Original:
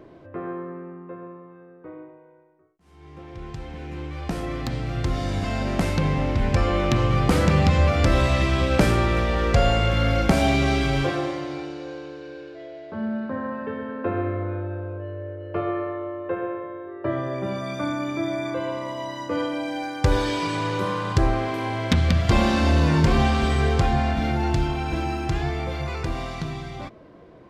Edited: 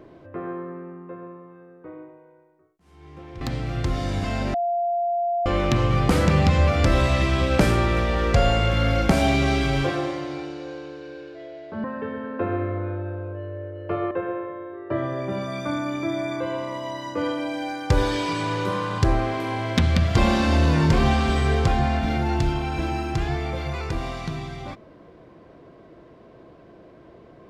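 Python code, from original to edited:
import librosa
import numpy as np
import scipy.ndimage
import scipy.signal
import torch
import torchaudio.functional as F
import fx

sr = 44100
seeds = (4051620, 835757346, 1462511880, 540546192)

y = fx.edit(x, sr, fx.cut(start_s=3.41, length_s=1.2),
    fx.bleep(start_s=5.74, length_s=0.92, hz=694.0, db=-20.5),
    fx.cut(start_s=13.04, length_s=0.45),
    fx.cut(start_s=15.76, length_s=0.49), tone=tone)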